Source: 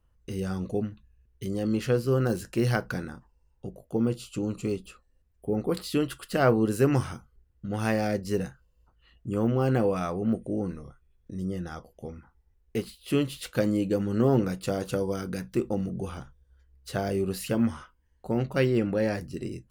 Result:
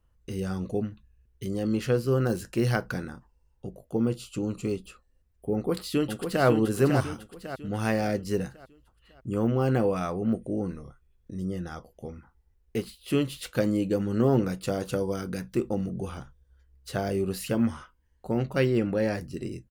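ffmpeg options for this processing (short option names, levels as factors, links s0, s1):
-filter_complex "[0:a]asplit=2[s0][s1];[s1]afade=t=in:st=5.53:d=0.01,afade=t=out:st=6.45:d=0.01,aecho=0:1:550|1100|1650|2200|2750:0.530884|0.238898|0.107504|0.0483768|0.0217696[s2];[s0][s2]amix=inputs=2:normalize=0"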